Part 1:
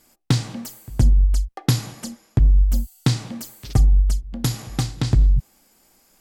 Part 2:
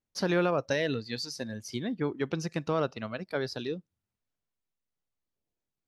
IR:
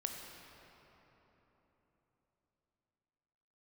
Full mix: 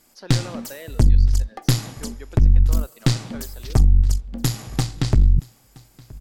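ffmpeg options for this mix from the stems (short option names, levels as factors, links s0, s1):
-filter_complex "[0:a]aeval=exprs='0.531*(cos(1*acos(clip(val(0)/0.531,-1,1)))-cos(1*PI/2))+0.0668*(cos(4*acos(clip(val(0)/0.531,-1,1)))-cos(4*PI/2))':c=same,volume=1.19,asplit=2[s0][s1];[s1]volume=0.0668[s2];[1:a]highpass=320,volume=0.376,asplit=2[s3][s4];[s4]volume=0.224[s5];[2:a]atrim=start_sample=2205[s6];[s5][s6]afir=irnorm=-1:irlink=0[s7];[s2]aecho=0:1:972:1[s8];[s0][s3][s7][s8]amix=inputs=4:normalize=0,aeval=exprs='(tanh(2.24*val(0)+0.45)-tanh(0.45))/2.24':c=same"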